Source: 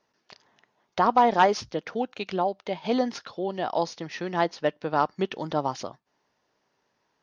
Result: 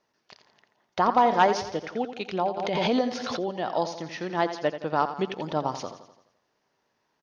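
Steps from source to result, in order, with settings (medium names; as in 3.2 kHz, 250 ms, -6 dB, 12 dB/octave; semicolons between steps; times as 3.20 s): on a send: feedback delay 85 ms, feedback 52%, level -11 dB; 2.57–3.54 s: on the sum: swell ahead of each attack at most 24 dB/s; trim -1 dB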